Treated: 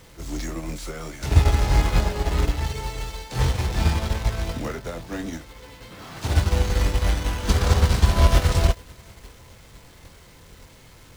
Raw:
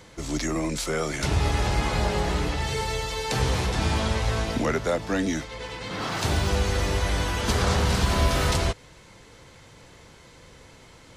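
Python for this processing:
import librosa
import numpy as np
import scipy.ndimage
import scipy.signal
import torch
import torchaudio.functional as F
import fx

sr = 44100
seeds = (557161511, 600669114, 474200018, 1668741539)

p1 = x + 0.5 * 10.0 ** (-26.5 / 20.0) * np.sign(x)
p2 = fx.low_shelf(p1, sr, hz=120.0, db=8.5)
p3 = 10.0 ** (-14.5 / 20.0) * np.tanh(p2 / 10.0 ** (-14.5 / 20.0))
p4 = p2 + (p3 * 10.0 ** (-9.0 / 20.0))
p5 = fx.doubler(p4, sr, ms=24.0, db=-8.0)
p6 = p5 + fx.echo_diffused(p5, sr, ms=467, feedback_pct=69, wet_db=-16, dry=0)
y = fx.upward_expand(p6, sr, threshold_db=-24.0, expansion=2.5)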